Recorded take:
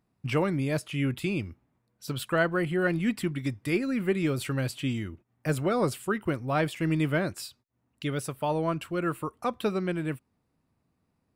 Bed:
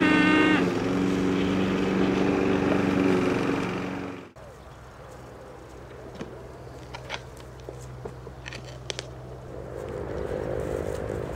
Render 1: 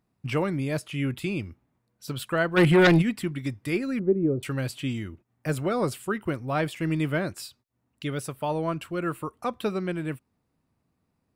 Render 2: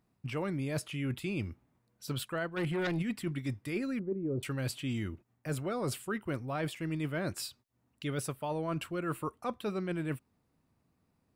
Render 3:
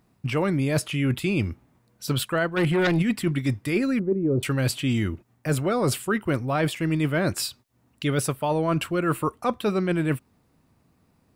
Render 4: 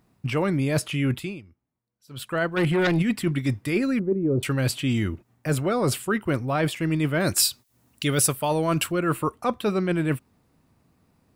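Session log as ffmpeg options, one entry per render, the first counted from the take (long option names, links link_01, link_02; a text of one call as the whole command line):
ffmpeg -i in.wav -filter_complex "[0:a]asplit=3[link_01][link_02][link_03];[link_01]afade=type=out:start_time=2.56:duration=0.02[link_04];[link_02]aeval=exprs='0.211*sin(PI/2*2.82*val(0)/0.211)':channel_layout=same,afade=type=in:start_time=2.56:duration=0.02,afade=type=out:start_time=3.01:duration=0.02[link_05];[link_03]afade=type=in:start_time=3.01:duration=0.02[link_06];[link_04][link_05][link_06]amix=inputs=3:normalize=0,asettb=1/sr,asplit=3[link_07][link_08][link_09];[link_07]atrim=end=3.994[link_10];[link_08]atrim=start=3.99:end=4.43,asetpts=PTS-STARTPTS,afade=type=in:duration=0.004:curve=qsin,afade=type=out:start_time=0.436:duration=0.004:curve=qsin,lowpass=frequency=440:width_type=q:width=1.7[link_11];[link_09]atrim=start=4.426[link_12];[link_10][link_11]acrossfade=duration=0.004:curve1=hsin:curve2=qsin[link_13];[link_13][link_12]acrossfade=duration=0.004:curve1=qsin:curve2=hsin" out.wav
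ffmpeg -i in.wav -af "alimiter=limit=-16.5dB:level=0:latency=1:release=344,areverse,acompressor=threshold=-31dB:ratio=10,areverse" out.wav
ffmpeg -i in.wav -af "volume=11dB" out.wav
ffmpeg -i in.wav -filter_complex "[0:a]asettb=1/sr,asplit=3[link_01][link_02][link_03];[link_01]atrim=end=7.204[link_04];[link_02]atrim=start=7.2:end=8.92,asetpts=PTS-STARTPTS,afade=type=in:duration=0.004:curve=qsin,afade=type=out:start_time=1.716:duration=0.004:curve=qsin,highshelf=frequency=4000:gain=11.5[link_05];[link_03]atrim=start=8.916[link_06];[link_04][link_05]acrossfade=duration=0.004:curve1=hsin:curve2=qsin[link_07];[link_07][link_06]acrossfade=duration=0.004:curve1=qsin:curve2=hsin,asplit=3[link_08][link_09][link_10];[link_08]atrim=end=1.41,asetpts=PTS-STARTPTS,afade=type=out:start_time=1.08:duration=0.33:silence=0.0707946[link_11];[link_09]atrim=start=1.41:end=2.1,asetpts=PTS-STARTPTS,volume=-23dB[link_12];[link_10]atrim=start=2.1,asetpts=PTS-STARTPTS,afade=type=in:duration=0.33:silence=0.0707946[link_13];[link_11][link_12][link_13]concat=n=3:v=0:a=1" out.wav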